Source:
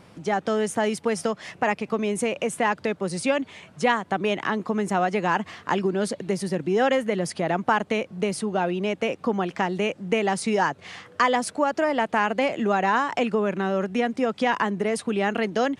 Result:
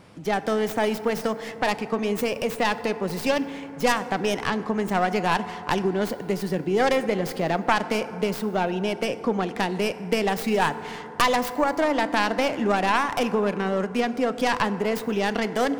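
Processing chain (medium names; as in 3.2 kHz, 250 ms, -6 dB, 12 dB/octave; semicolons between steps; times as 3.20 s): tracing distortion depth 0.24 ms; FDN reverb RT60 3.4 s, high-frequency decay 0.3×, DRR 11.5 dB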